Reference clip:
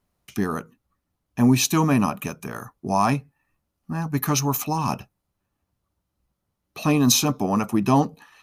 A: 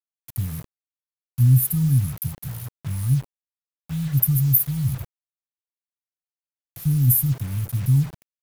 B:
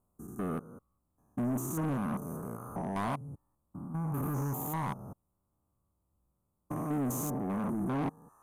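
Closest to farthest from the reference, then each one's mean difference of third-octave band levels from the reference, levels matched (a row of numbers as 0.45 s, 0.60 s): B, A; 8.0 dB, 11.5 dB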